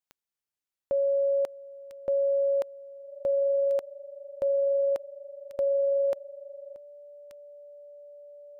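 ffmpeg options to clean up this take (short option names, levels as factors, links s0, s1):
-af "adeclick=t=4,bandreject=f=580:w=30"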